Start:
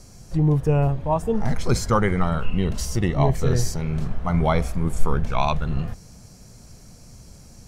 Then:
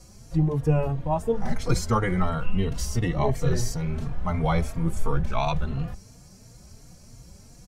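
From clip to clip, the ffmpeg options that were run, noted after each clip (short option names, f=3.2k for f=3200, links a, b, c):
-filter_complex "[0:a]asplit=2[a][b];[b]adelay=3.7,afreqshift=2.9[c];[a][c]amix=inputs=2:normalize=1"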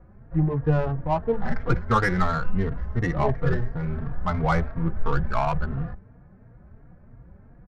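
-af "lowpass=f=1.7k:t=q:w=3.2,adynamicsmooth=sensitivity=2:basefreq=1.2k"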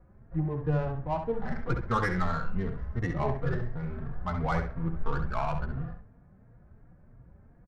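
-filter_complex "[0:a]asplit=2[a][b];[b]adelay=67,lowpass=f=4.9k:p=1,volume=-7dB,asplit=2[c][d];[d]adelay=67,lowpass=f=4.9k:p=1,volume=0.24,asplit=2[e][f];[f]adelay=67,lowpass=f=4.9k:p=1,volume=0.24[g];[a][c][e][g]amix=inputs=4:normalize=0,volume=-7dB"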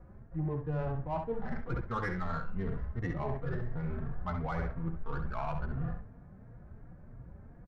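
-af "areverse,acompressor=threshold=-35dB:ratio=10,areverse,lowpass=f=3.8k:p=1,volume=4.5dB"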